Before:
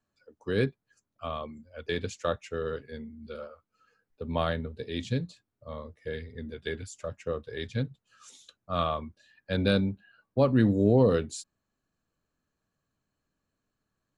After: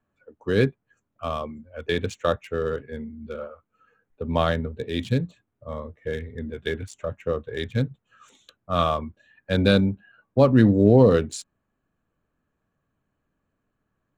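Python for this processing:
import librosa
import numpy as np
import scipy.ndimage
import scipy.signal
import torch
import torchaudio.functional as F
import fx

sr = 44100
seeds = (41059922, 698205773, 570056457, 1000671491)

y = fx.wiener(x, sr, points=9)
y = y * librosa.db_to_amplitude(6.5)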